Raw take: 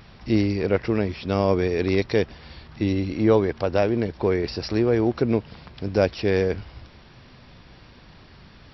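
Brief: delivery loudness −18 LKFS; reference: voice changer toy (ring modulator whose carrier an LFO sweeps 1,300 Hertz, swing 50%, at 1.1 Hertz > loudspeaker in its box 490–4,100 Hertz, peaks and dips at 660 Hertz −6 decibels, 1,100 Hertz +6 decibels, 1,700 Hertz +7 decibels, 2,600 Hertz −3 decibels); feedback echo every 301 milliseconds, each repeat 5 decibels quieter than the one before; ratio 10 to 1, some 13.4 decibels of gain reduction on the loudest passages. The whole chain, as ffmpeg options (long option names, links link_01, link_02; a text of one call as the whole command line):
ffmpeg -i in.wav -af "acompressor=threshold=-27dB:ratio=10,aecho=1:1:301|602|903|1204|1505|1806|2107:0.562|0.315|0.176|0.0988|0.0553|0.031|0.0173,aeval=exprs='val(0)*sin(2*PI*1300*n/s+1300*0.5/1.1*sin(2*PI*1.1*n/s))':channel_layout=same,highpass=490,equalizer=frequency=660:width_type=q:width=4:gain=-6,equalizer=frequency=1100:width_type=q:width=4:gain=6,equalizer=frequency=1700:width_type=q:width=4:gain=7,equalizer=frequency=2600:width_type=q:width=4:gain=-3,lowpass=frequency=4100:width=0.5412,lowpass=frequency=4100:width=1.3066,volume=12.5dB" out.wav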